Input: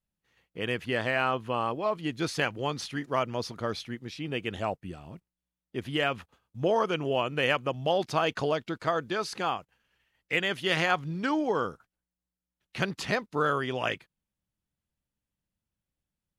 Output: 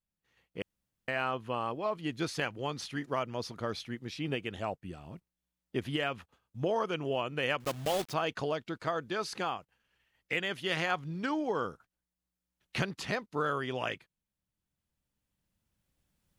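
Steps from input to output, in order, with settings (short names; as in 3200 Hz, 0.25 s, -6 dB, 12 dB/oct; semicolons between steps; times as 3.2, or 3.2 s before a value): 7.6–8.14 block floating point 3-bit; recorder AGC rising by 7 dB/s; 0.62–1.08 room tone; gain -5.5 dB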